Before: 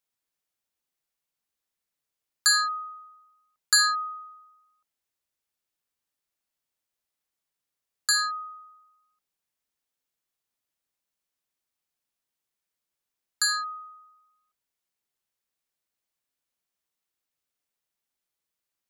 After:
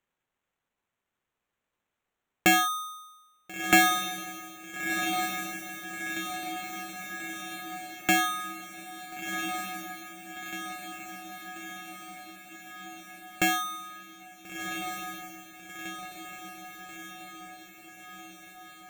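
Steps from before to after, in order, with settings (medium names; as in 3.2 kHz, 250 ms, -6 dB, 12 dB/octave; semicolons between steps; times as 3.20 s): sample-and-hold 9×; echo that smears into a reverb 1403 ms, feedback 65%, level -6 dB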